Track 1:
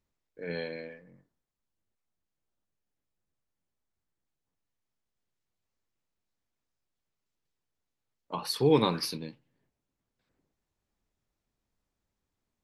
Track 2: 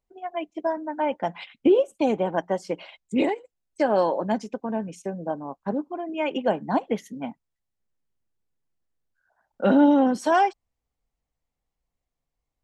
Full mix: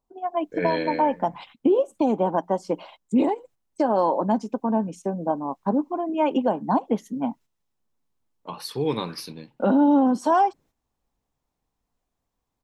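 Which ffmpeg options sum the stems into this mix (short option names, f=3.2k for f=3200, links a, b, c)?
-filter_complex "[0:a]bandreject=f=4.6k:w=21,dynaudnorm=f=140:g=3:m=12dB,adelay=150,volume=-1dB[a];[1:a]equalizer=f=250:t=o:w=1:g=7,equalizer=f=1k:t=o:w=1:g=10,equalizer=f=2k:t=o:w=1:g=-9,volume=0dB,asplit=2[b][c];[c]apad=whole_len=563978[d];[a][d]sidechaingate=range=-11dB:threshold=-46dB:ratio=16:detection=peak[e];[e][b]amix=inputs=2:normalize=0,alimiter=limit=-11.5dB:level=0:latency=1:release=253"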